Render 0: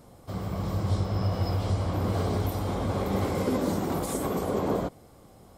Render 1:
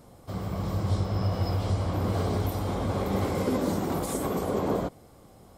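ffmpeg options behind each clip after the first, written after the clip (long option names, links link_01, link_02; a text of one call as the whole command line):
ffmpeg -i in.wav -af anull out.wav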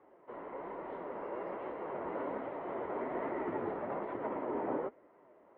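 ffmpeg -i in.wav -af "flanger=delay=3.8:depth=5.5:regen=64:speed=1.2:shape=triangular,highpass=frequency=500:width_type=q:width=0.5412,highpass=frequency=500:width_type=q:width=1.307,lowpass=frequency=2300:width_type=q:width=0.5176,lowpass=frequency=2300:width_type=q:width=0.7071,lowpass=frequency=2300:width_type=q:width=1.932,afreqshift=-150,volume=1dB" out.wav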